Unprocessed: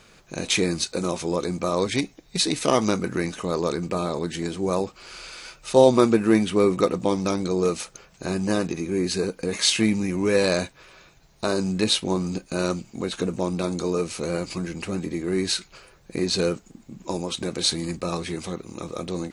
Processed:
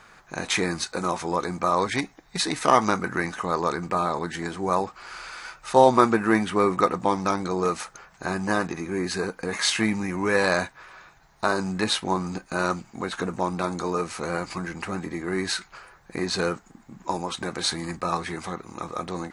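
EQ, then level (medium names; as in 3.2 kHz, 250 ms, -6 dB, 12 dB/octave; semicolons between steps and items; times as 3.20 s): high-order bell 1.2 kHz +10.5 dB; -3.5 dB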